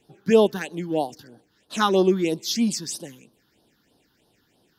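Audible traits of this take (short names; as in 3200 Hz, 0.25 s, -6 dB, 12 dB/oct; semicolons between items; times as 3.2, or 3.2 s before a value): phasing stages 6, 3.1 Hz, lowest notch 600–2200 Hz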